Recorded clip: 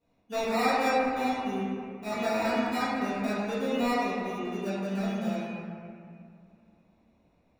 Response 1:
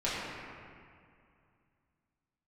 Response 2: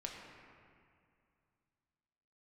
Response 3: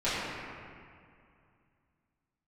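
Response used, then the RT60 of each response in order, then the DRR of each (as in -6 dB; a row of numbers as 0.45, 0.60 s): 3; 2.4, 2.4, 2.4 s; -10.5, -1.0, -14.5 dB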